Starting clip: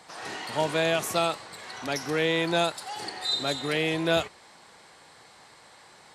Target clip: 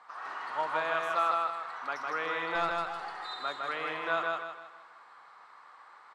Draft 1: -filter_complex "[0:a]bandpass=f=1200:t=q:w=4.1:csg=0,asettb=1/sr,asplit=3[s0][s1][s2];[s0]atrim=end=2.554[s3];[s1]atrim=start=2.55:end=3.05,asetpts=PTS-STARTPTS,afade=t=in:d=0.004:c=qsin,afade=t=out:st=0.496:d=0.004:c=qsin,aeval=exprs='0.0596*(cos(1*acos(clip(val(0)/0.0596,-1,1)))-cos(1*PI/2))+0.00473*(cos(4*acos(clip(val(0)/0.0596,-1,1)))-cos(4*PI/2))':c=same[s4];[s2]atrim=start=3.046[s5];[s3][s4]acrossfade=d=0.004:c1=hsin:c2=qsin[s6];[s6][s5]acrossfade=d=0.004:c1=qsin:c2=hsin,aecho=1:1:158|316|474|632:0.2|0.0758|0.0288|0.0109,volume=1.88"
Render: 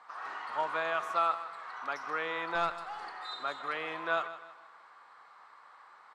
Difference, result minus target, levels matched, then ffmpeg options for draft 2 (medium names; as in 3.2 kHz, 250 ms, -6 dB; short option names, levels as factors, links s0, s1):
echo-to-direct -11.5 dB
-filter_complex "[0:a]bandpass=f=1200:t=q:w=4.1:csg=0,asettb=1/sr,asplit=3[s0][s1][s2];[s0]atrim=end=2.554[s3];[s1]atrim=start=2.55:end=3.05,asetpts=PTS-STARTPTS,afade=t=in:d=0.004:c=qsin,afade=t=out:st=0.496:d=0.004:c=qsin,aeval=exprs='0.0596*(cos(1*acos(clip(val(0)/0.0596,-1,1)))-cos(1*PI/2))+0.00473*(cos(4*acos(clip(val(0)/0.0596,-1,1)))-cos(4*PI/2))':c=same[s4];[s2]atrim=start=3.046[s5];[s3][s4]acrossfade=d=0.004:c1=hsin:c2=qsin[s6];[s6][s5]acrossfade=d=0.004:c1=qsin:c2=hsin,aecho=1:1:158|316|474|632|790:0.75|0.285|0.108|0.0411|0.0156,volume=1.88"